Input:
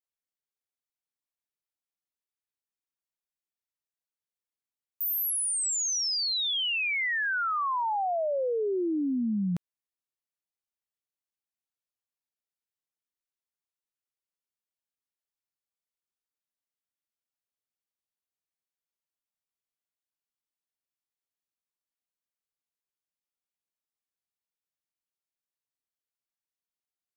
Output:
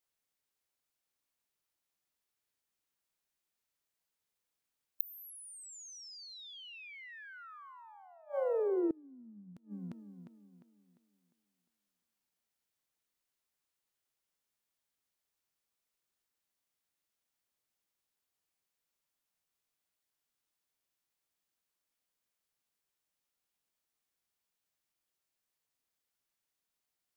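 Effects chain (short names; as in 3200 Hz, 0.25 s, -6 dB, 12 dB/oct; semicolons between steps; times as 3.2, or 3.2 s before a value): formant shift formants +2 st; tape echo 0.351 s, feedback 43%, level -17 dB, low-pass 4200 Hz; flipped gate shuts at -31 dBFS, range -28 dB; gain +6.5 dB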